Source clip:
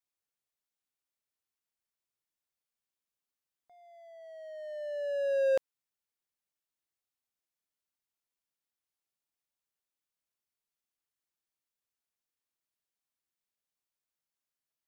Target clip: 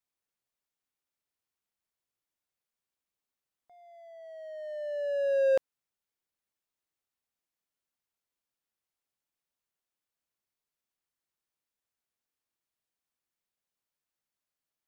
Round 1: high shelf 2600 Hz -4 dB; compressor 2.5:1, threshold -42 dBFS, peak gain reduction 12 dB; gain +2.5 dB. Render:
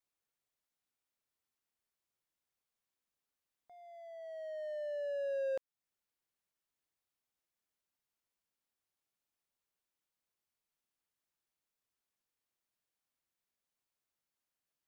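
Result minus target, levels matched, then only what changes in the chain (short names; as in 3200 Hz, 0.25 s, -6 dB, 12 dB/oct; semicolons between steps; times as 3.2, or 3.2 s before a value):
compressor: peak gain reduction +12 dB
remove: compressor 2.5:1, threshold -42 dBFS, peak gain reduction 12 dB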